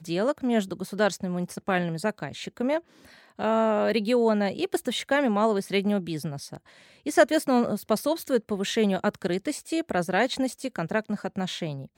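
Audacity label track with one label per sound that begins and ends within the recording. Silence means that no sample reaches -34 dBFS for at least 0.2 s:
3.390000	6.570000	sound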